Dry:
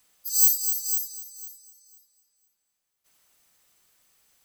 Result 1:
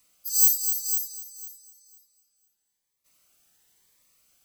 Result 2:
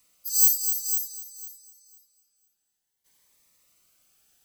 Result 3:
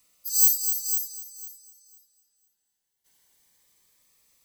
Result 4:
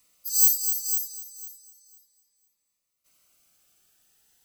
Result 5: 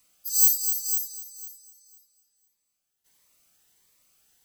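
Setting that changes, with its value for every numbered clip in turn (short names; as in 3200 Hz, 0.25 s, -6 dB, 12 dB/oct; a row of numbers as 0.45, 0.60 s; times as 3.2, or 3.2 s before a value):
cascading phaser, rate: 0.97, 0.55, 0.21, 0.35, 1.5 Hz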